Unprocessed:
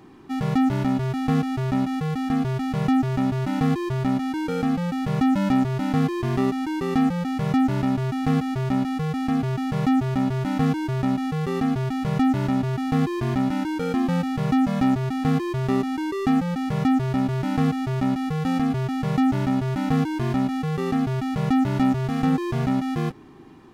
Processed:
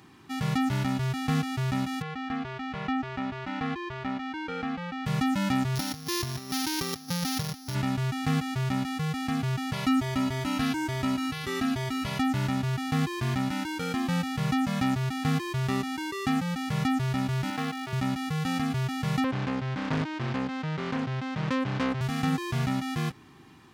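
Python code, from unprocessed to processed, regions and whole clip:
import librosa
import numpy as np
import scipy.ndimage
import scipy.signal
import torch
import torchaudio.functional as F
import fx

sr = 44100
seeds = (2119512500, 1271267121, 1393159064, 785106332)

y = fx.chain(x, sr, fx.lowpass(hz=2700.0, slope=12),
    fx.peak_eq(hz=130.0, db=-14.0, octaves=0.99), at=(2.02, 5.06))
y = fx.chain(y, sr, fx.sample_sort(block=8),
    fx.notch(hz=210.0, q=5.8),
    fx.over_compress(threshold_db=-27.0, ratio=-0.5), at=(5.75, 7.75))
y = fx.chain(y, sr, fx.comb(ms=3.1, depth=0.73),
    fx.echo_single(ms=404, db=-22.0), at=(9.73, 12.19))
y = fx.chain(y, sr, fx.highpass(hz=280.0, slope=12),
    fx.resample_linear(factor=3), at=(17.5, 17.93))
y = fx.chain(y, sr, fx.highpass(hz=130.0, slope=12),
    fx.air_absorb(metres=170.0),
    fx.doppler_dist(depth_ms=0.61), at=(19.24, 22.01))
y = scipy.signal.sosfilt(scipy.signal.butter(2, 89.0, 'highpass', fs=sr, output='sos'), y)
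y = fx.peak_eq(y, sr, hz=400.0, db=-13.5, octaves=2.9)
y = F.gain(torch.from_numpy(y), 4.0).numpy()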